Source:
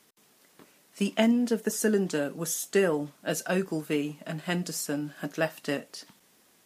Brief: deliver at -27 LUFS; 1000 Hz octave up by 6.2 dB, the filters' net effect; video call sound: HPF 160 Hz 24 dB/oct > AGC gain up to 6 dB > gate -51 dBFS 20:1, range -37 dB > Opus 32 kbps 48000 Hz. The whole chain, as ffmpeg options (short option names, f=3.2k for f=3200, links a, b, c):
-af "highpass=f=160:w=0.5412,highpass=f=160:w=1.3066,equalizer=f=1k:t=o:g=9,dynaudnorm=m=6dB,agate=range=-37dB:threshold=-51dB:ratio=20,volume=1dB" -ar 48000 -c:a libopus -b:a 32k